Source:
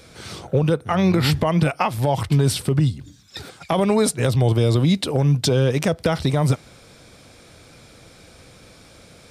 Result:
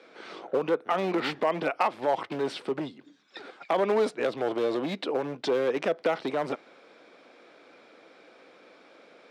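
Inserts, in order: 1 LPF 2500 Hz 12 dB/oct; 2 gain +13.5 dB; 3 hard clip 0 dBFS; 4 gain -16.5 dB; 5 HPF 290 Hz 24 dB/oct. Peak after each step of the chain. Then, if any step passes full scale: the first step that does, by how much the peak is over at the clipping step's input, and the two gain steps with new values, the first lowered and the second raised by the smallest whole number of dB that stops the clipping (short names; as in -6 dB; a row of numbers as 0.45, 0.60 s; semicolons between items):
-8.5, +5.0, 0.0, -16.5, -12.0 dBFS; step 2, 5.0 dB; step 2 +8.5 dB, step 4 -11.5 dB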